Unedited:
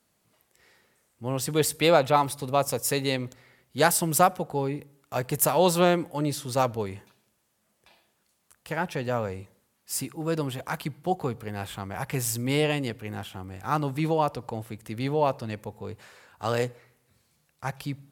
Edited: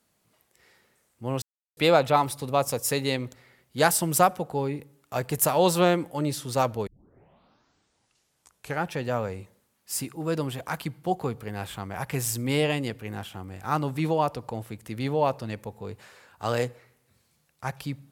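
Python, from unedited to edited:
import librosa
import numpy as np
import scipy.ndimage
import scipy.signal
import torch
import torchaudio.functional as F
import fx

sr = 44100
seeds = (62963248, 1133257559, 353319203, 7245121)

y = fx.edit(x, sr, fx.silence(start_s=1.42, length_s=0.35),
    fx.tape_start(start_s=6.87, length_s=2.03), tone=tone)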